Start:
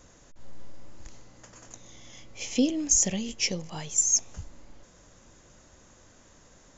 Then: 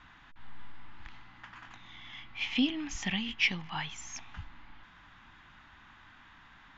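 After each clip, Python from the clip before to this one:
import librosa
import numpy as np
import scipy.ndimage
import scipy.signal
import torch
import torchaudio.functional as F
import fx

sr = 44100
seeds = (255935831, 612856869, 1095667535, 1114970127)

y = fx.curve_eq(x, sr, hz=(280.0, 530.0, 820.0, 1600.0, 3500.0, 6800.0), db=(0, -16, 8, 13, 9, -21))
y = F.gain(torch.from_numpy(y), -4.0).numpy()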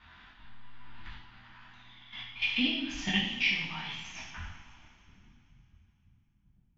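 y = fx.filter_sweep_lowpass(x, sr, from_hz=4500.0, to_hz=150.0, start_s=4.09, end_s=5.4, q=1.5)
y = fx.level_steps(y, sr, step_db=15)
y = fx.rev_double_slope(y, sr, seeds[0], early_s=0.69, late_s=3.1, knee_db=-15, drr_db=-7.5)
y = F.gain(torch.from_numpy(y), -2.5).numpy()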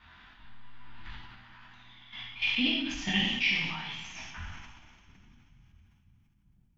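y = fx.sustainer(x, sr, db_per_s=41.0)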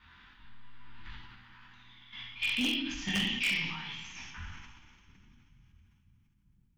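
y = fx.peak_eq(x, sr, hz=670.0, db=-13.0, octaves=0.36)
y = 10.0 ** (-21.0 / 20.0) * (np.abs((y / 10.0 ** (-21.0 / 20.0) + 3.0) % 4.0 - 2.0) - 1.0)
y = F.gain(torch.from_numpy(y), -2.0).numpy()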